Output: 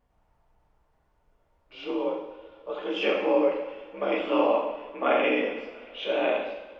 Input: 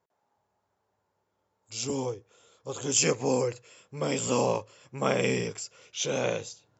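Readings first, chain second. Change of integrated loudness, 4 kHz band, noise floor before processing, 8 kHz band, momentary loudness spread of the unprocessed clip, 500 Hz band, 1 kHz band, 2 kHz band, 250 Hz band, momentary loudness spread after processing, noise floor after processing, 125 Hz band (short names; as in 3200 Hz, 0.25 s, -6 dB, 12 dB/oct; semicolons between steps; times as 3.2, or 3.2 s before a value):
+2.0 dB, -1.5 dB, -78 dBFS, n/a, 16 LU, +4.0 dB, +4.5 dB, +4.0 dB, +2.5 dB, 15 LU, -69 dBFS, under -15 dB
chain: mistuned SSB +51 Hz 220–3100 Hz; added noise brown -71 dBFS; two-slope reverb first 0.79 s, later 3.4 s, from -20 dB, DRR -2 dB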